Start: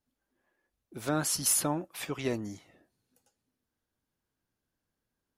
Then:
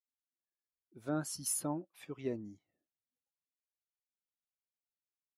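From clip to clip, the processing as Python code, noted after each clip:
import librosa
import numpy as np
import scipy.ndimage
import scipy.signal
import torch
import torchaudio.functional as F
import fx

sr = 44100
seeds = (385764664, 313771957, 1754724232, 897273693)

y = fx.spectral_expand(x, sr, expansion=1.5)
y = F.gain(torch.from_numpy(y), -8.5).numpy()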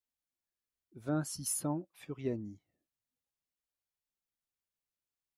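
y = fx.low_shelf(x, sr, hz=150.0, db=10.0)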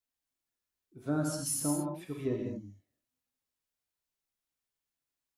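y = fx.rev_gated(x, sr, seeds[0], gate_ms=250, shape='flat', drr_db=0.0)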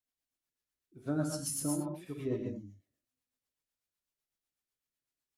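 y = fx.rotary(x, sr, hz=8.0)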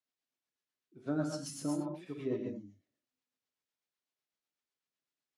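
y = fx.bandpass_edges(x, sr, low_hz=160.0, high_hz=5700.0)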